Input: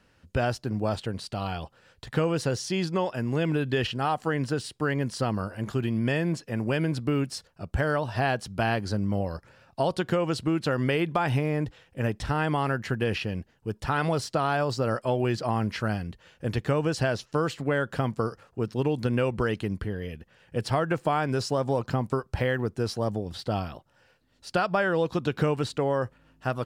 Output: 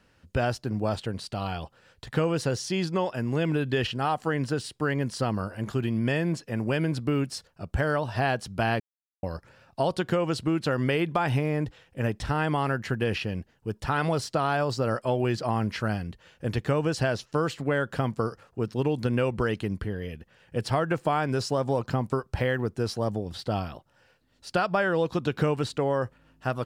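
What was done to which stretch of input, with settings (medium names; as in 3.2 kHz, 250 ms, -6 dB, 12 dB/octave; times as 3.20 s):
8.80–9.23 s: mute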